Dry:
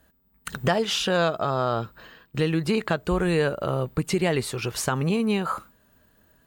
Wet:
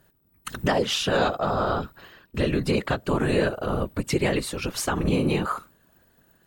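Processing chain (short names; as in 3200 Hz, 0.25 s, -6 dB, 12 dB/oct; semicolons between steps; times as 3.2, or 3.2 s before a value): whisperiser; 4.93–5.34 doubler 45 ms -9 dB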